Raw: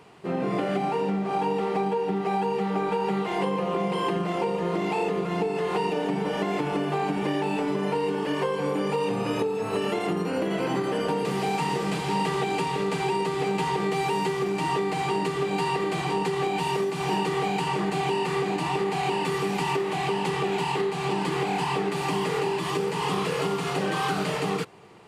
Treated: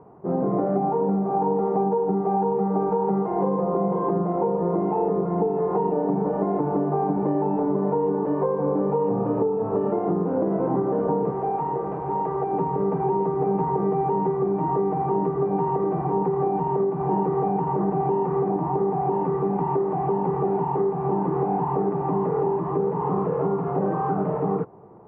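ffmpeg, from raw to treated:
ffmpeg -i in.wav -filter_complex "[0:a]asettb=1/sr,asplit=3[link_01][link_02][link_03];[link_01]atrim=end=11.304[link_04];[link_02]atrim=start=11.3:end=12.53,asetpts=PTS-STARTPTS,afade=type=in:duration=0.004:curve=qsin,afade=type=out:start_time=1.226:duration=0.004:curve=qsin,equalizer=frequency=200:width=1.5:gain=-12[link_05];[link_03]atrim=start=12.526[link_06];[link_04][link_05]acrossfade=duration=0.004:curve1=hsin:curve2=qsin[link_07];[link_07][link_06]acrossfade=duration=0.004:curve1=qsin:curve2=hsin,asettb=1/sr,asplit=3[link_08][link_09][link_10];[link_08]atrim=end=18.504[link_11];[link_09]atrim=start=18.5:end=19.14,asetpts=PTS-STARTPTS,afade=type=in:duration=0.004:curve=qsin,afade=type=out:start_time=0.636:duration=0.004:curve=qsin,lowpass=frequency=2500:poles=1[link_12];[link_10]atrim=start=19.136[link_13];[link_11][link_12]acrossfade=duration=0.004:curve1=hsin:curve2=qsin[link_14];[link_14][link_13]acrossfade=duration=0.004:curve1=qsin:curve2=hsin,lowpass=frequency=1000:width=0.5412,lowpass=frequency=1000:width=1.3066,volume=4dB" out.wav

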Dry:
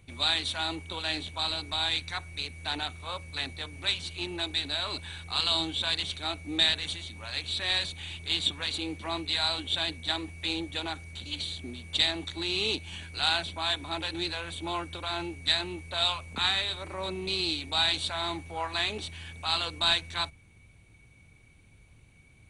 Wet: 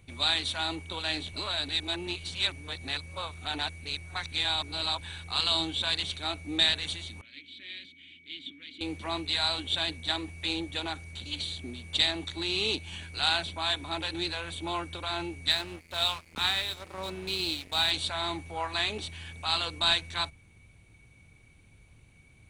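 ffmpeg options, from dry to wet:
ffmpeg -i in.wav -filter_complex "[0:a]asettb=1/sr,asplit=3[link_01][link_02][link_03];[link_01]atrim=end=7.214[link_04];[link_02]atrim=start=7.21:end=8.81,asetpts=PTS-STARTPTS,afade=type=in:duration=0.004:curve=qsin,afade=type=out:start_time=1.596:duration=0.004:curve=qsin,asplit=3[link_05][link_06][link_07];[link_05]bandpass=frequency=270:width_type=q:width=8,volume=0dB[link_08];[link_06]bandpass=frequency=2290:width_type=q:width=8,volume=-6dB[link_09];[link_07]bandpass=frequency=3010:width_type=q:width=8,volume=-9dB[link_10];[link_08][link_09][link_10]amix=inputs=3:normalize=0[link_11];[link_03]atrim=start=8.806[link_12];[link_04][link_11]acrossfade=duration=0.004:curve1=hsin:curve2=qsin[link_13];[link_13][link_12]acrossfade=duration=0.004:curve1=qsin:curve2=hsin,asettb=1/sr,asplit=3[link_14][link_15][link_16];[link_14]atrim=end=15.504[link_17];[link_15]atrim=start=15.5:end=17.91,asetpts=PTS-STARTPTS,afade=type=in:duration=0.004:curve=qsin,afade=type=out:start_time=2.406:duration=0.004:curve=qsin,aeval=exprs='sgn(val(0))*max(abs(val(0))-0.0075,0)':channel_layout=same[link_18];[link_16]atrim=start=17.906[link_19];[link_17][link_18]acrossfade=duration=0.004:curve1=hsin:curve2=qsin[link_20];[link_20][link_19]acrossfade=duration=0.004:curve1=qsin:curve2=hsin,asplit=3[link_21][link_22][link_23];[link_21]atrim=end=1.332[link_24];[link_22]atrim=start=1.328:end=5.012,asetpts=PTS-STARTPTS,areverse[link_25];[link_23]atrim=start=5.008[link_26];[link_24][link_25]acrossfade=duration=0.004:curve1=hsin:curve2=hsin[link_27];[link_27][link_26]acrossfade=duration=0.004:curve1=hsin:curve2=hsin" out.wav

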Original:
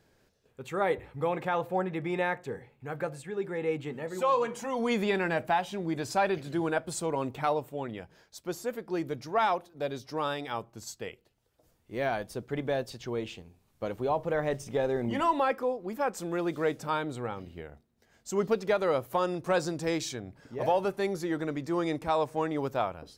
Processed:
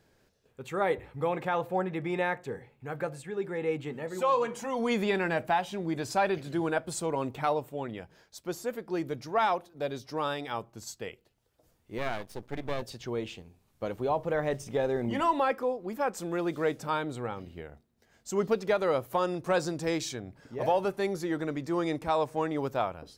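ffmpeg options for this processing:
ffmpeg -i in.wav -filter_complex "[0:a]asettb=1/sr,asplit=3[link_01][link_02][link_03];[link_01]atrim=end=11.984[link_04];[link_02]atrim=start=11.98:end=12.82,asetpts=PTS-STARTPTS,afade=type=in:duration=0.004:curve=qsin,afade=type=out:start_time=0.836:duration=0.004:curve=qsin,aeval=exprs='max(val(0),0)':channel_layout=same[link_05];[link_03]atrim=start=12.816[link_06];[link_04][link_05]acrossfade=duration=0.004:curve1=hsin:curve2=qsin[link_07];[link_07][link_06]acrossfade=duration=0.004:curve1=qsin:curve2=hsin" out.wav

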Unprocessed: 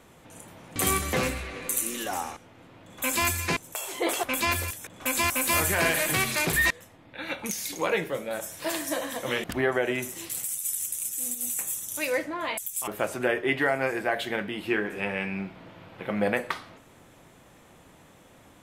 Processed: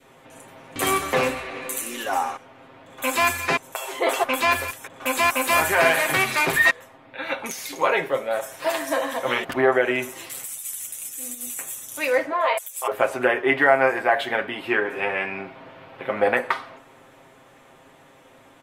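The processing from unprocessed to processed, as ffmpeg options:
ffmpeg -i in.wav -filter_complex "[0:a]asettb=1/sr,asplit=3[link_01][link_02][link_03];[link_01]atrim=end=12.324[link_04];[link_02]atrim=start=12.32:end=12.92,asetpts=PTS-STARTPTS,afade=type=in:duration=0.004:curve=qsin,afade=type=out:start_time=0.596:duration=0.004:curve=qsin,lowshelf=frequency=340:width_type=q:width=3:gain=-10.5[link_05];[link_03]atrim=start=12.916[link_06];[link_04][link_05]acrossfade=duration=0.004:curve1=hsin:curve2=qsin[link_07];[link_07][link_06]acrossfade=duration=0.004:curve1=qsin:curve2=hsin,bass=frequency=250:gain=-9,treble=frequency=4000:gain=-7,aecho=1:1:7.5:0.56,adynamicequalizer=threshold=0.0112:dfrequency=980:dqfactor=0.86:tfrequency=980:tqfactor=0.86:attack=5:release=100:ratio=0.375:range=2.5:mode=boostabove:tftype=bell,volume=3.5dB" out.wav

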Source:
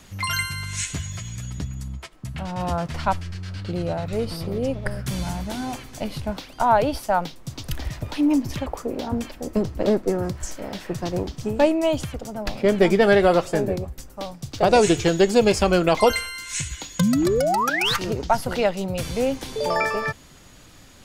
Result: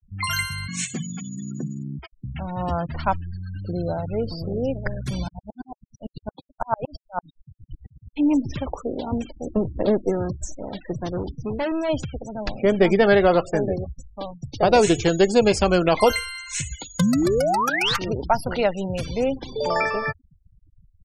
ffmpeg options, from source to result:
ffmpeg -i in.wav -filter_complex "[0:a]asettb=1/sr,asplit=3[link_01][link_02][link_03];[link_01]atrim=end=0.684[link_04];[link_02]atrim=start=0.68:end=1.99,asetpts=PTS-STARTPTS,afade=type=in:duration=0.004:curve=qsin,afade=type=out:start_time=1.306:duration=0.004:curve=qsin,afreqshift=79[link_05];[link_03]atrim=start=1.986[link_06];[link_04][link_05]acrossfade=duration=0.004:curve1=hsin:curve2=qsin[link_07];[link_07][link_06]acrossfade=duration=0.004:curve1=qsin:curve2=hsin,asettb=1/sr,asplit=3[link_08][link_09][link_10];[link_08]atrim=end=5.284[link_11];[link_09]atrim=start=5.28:end=8.17,asetpts=PTS-STARTPTS,afade=type=in:duration=0.004:curve=qsin,afade=type=out:start_time=2.886:duration=0.004:curve=qsin,aeval=exprs='val(0)*pow(10,-39*if(lt(mod(-8.9*n/s,1),2*abs(-8.9)/1000),1-mod(-8.9*n/s,1)/(2*abs(-8.9)/1000),(mod(-8.9*n/s,1)-2*abs(-8.9)/1000)/(1-2*abs(-8.9)/1000))/20)':channel_layout=same[link_12];[link_10]atrim=start=8.166[link_13];[link_11][link_12]acrossfade=duration=0.004:curve1=hsin:curve2=qsin[link_14];[link_14][link_13]acrossfade=duration=0.004:curve1=qsin:curve2=hsin,asplit=3[link_15][link_16][link_17];[link_15]afade=type=out:start_time=10.91:duration=0.02[link_18];[link_16]asoftclip=type=hard:threshold=-22.5dB,afade=type=in:start_time=10.91:duration=0.02,afade=type=out:start_time=11.88:duration=0.02[link_19];[link_17]afade=type=in:start_time=11.88:duration=0.02[link_20];[link_18][link_19][link_20]amix=inputs=3:normalize=0,afftfilt=real='re*gte(hypot(re,im),0.0251)':imag='im*gte(hypot(re,im),0.0251)':win_size=1024:overlap=0.75" out.wav

